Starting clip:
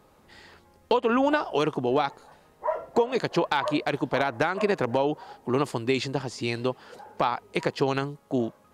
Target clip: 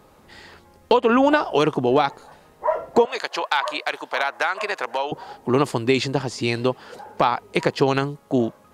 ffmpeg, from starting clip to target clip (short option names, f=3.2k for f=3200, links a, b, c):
-filter_complex "[0:a]asettb=1/sr,asplit=3[a][b][c];[a]atrim=end=3.054[d];[b]atrim=start=3.05:end=5.12,asetpts=PTS-STARTPTS,afade=t=in:d=0.004:c=qsin,afade=t=out:st=2.066:d=0.004:c=qsin,highpass=850[e];[c]atrim=start=5.116[f];[d][e]acrossfade=d=0.004:c1=hsin:c2=qsin[g];[g][f]acrossfade=d=0.004:c1=qsin:c2=hsin,volume=6dB"